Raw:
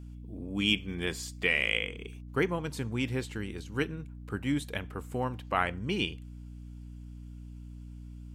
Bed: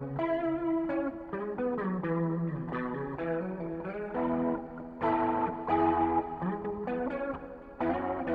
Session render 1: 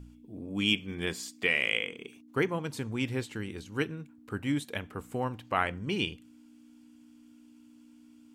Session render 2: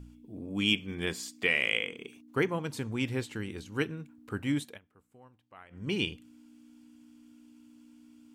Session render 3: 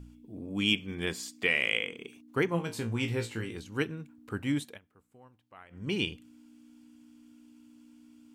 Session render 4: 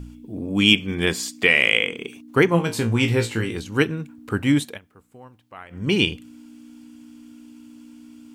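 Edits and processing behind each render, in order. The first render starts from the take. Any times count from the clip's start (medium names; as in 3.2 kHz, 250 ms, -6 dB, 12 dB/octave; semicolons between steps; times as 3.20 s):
de-hum 60 Hz, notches 3
4.62–5.87 s: dip -24 dB, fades 0.17 s
2.50–3.58 s: flutter echo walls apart 3 m, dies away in 0.2 s
trim +11.5 dB; peak limiter -2 dBFS, peak gain reduction 1.5 dB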